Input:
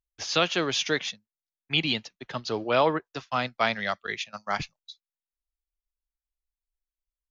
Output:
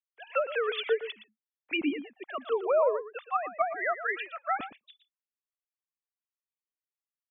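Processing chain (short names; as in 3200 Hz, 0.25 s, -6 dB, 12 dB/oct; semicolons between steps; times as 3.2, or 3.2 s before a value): sine-wave speech; treble ducked by the level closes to 660 Hz, closed at -21 dBFS; outdoor echo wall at 20 m, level -12 dB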